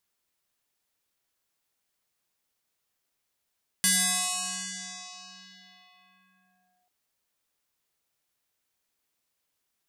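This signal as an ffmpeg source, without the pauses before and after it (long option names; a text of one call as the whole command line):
ffmpeg -f lavfi -i "aevalsrc='0.112*pow(10,-3*t/3.37)*sin(2*PI*725*t+12*clip(1-t/3.04,0,1)*sin(2*PI*1.26*725*t))':duration=3.04:sample_rate=44100" out.wav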